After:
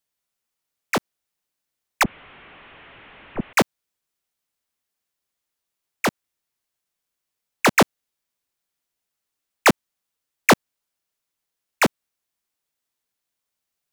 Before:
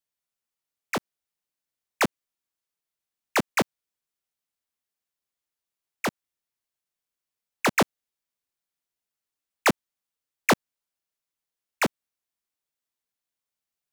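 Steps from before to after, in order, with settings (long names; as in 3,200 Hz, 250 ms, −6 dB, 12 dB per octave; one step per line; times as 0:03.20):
0:02.03–0:03.53: linear delta modulator 16 kbit/s, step −45.5 dBFS
level +6 dB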